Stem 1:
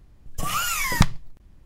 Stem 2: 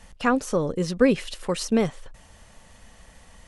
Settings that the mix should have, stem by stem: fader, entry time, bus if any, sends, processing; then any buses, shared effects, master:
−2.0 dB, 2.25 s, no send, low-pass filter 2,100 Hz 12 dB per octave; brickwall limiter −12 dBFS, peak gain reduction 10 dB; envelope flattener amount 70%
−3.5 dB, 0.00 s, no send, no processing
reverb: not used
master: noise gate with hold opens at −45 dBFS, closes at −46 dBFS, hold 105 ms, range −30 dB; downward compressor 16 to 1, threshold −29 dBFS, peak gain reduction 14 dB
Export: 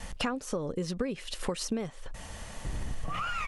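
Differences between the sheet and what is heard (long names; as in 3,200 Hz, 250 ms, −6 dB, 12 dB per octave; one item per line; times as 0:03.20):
stem 1: entry 2.25 s → 2.65 s
stem 2 −3.5 dB → +8.0 dB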